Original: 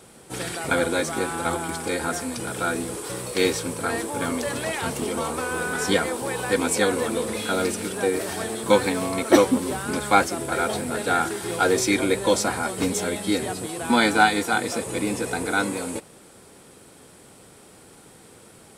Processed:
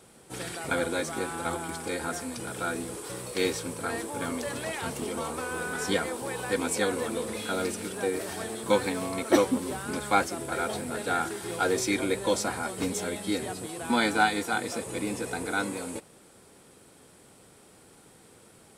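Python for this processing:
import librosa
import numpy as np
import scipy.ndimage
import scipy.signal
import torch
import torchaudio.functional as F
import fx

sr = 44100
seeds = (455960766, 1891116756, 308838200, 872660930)

y = fx.dmg_crackle(x, sr, seeds[0], per_s=fx.line((7.92, 300.0), (8.47, 71.0)), level_db=-42.0, at=(7.92, 8.47), fade=0.02)
y = F.gain(torch.from_numpy(y), -6.0).numpy()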